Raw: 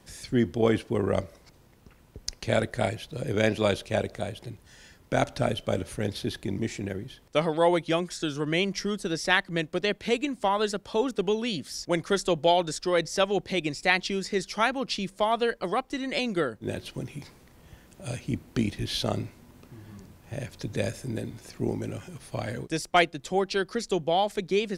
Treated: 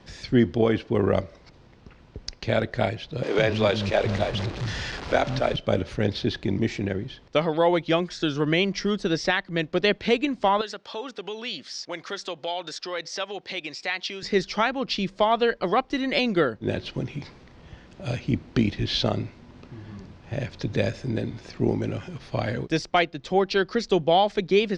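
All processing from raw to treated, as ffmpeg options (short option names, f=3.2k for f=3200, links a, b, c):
-filter_complex "[0:a]asettb=1/sr,asplit=3[a][b][c];[a]atrim=end=3.234[d];[b]atrim=start=3.23:end=5.56,asetpts=PTS-STARTPTS,afade=t=in:d=0.004:c=qsin,afade=t=out:st=2.326:d=0.004:c=qsin,aeval=exprs='val(0)+0.5*0.0251*sgn(val(0))':c=same,acrossover=split=260[e][f];[e]adelay=150[g];[g][f]amix=inputs=2:normalize=0,atrim=end_sample=102753[h];[c]atrim=start=5.556[i];[d][h]acrossfade=d=0.004:c1=hsin:c2=qsin[j];[j][i]acrossfade=d=0.004:c1=qsin:c2=hsin,asettb=1/sr,asplit=3[k][l][m];[k]atrim=end=10.614[n];[l]atrim=start=10.61:end=14.23,asetpts=PTS-STARTPTS,afade=t=in:d=0.004:c=qsin,afade=t=out:st=3.616:d=0.004:c=qsin,acompressor=threshold=-30dB:ratio=2.5:attack=3.2:release=140:knee=1:detection=peak,highpass=f=950:p=1[o];[m]atrim=start=14.226[p];[n][o]acrossfade=d=0.004:c1=hsin:c2=qsin[q];[q][p]acrossfade=d=0.004:c1=qsin:c2=hsin,alimiter=limit=-14.5dB:level=0:latency=1:release=469,lowpass=f=5.2k:w=0.5412,lowpass=f=5.2k:w=1.3066,volume=5.5dB"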